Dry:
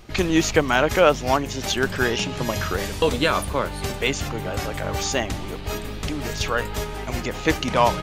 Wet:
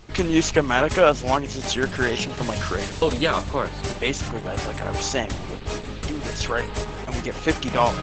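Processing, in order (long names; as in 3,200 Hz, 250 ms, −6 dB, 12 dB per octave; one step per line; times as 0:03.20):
0:05.51–0:06.11: dynamic equaliser 520 Hz, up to +5 dB, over −55 dBFS, Q 7.3
Opus 12 kbit/s 48,000 Hz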